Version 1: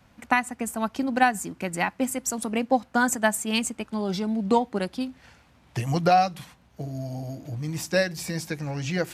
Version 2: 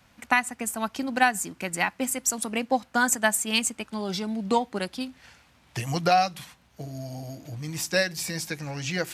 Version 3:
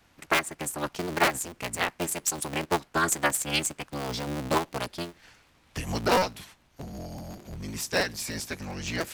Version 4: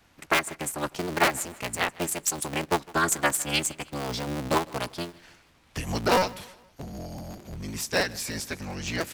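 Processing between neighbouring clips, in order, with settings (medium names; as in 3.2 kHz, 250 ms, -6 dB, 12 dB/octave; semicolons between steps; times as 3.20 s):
tilt shelf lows -4 dB, about 1.2 kHz
cycle switcher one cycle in 3, inverted; trim -2.5 dB
feedback delay 156 ms, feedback 43%, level -22.5 dB; trim +1 dB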